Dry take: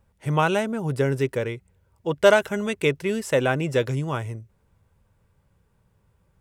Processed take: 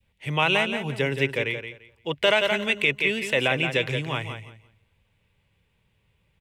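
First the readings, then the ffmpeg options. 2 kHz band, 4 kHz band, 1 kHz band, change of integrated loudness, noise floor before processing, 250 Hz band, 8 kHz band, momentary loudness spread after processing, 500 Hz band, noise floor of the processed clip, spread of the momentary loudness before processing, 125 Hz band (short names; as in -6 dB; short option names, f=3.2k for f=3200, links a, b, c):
+4.5 dB, +8.0 dB, -2.5 dB, 0.0 dB, -67 dBFS, -4.5 dB, -4.5 dB, 13 LU, -4.0 dB, -70 dBFS, 14 LU, -4.5 dB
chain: -filter_complex "[0:a]adynamicequalizer=threshold=0.0282:dfrequency=1000:dqfactor=0.74:tfrequency=1000:tqfactor=0.74:attack=5:release=100:ratio=0.375:range=2.5:mode=boostabove:tftype=bell,aecho=1:1:172|344|516:0.355|0.071|0.0142,acrossover=split=210|800|3300[a][b][c][d];[c]aexciter=amount=11.5:drive=3.6:freq=2.1k[e];[a][b][e][d]amix=inputs=4:normalize=0,alimiter=level_in=3.5dB:limit=-1dB:release=50:level=0:latency=1,volume=-8.5dB"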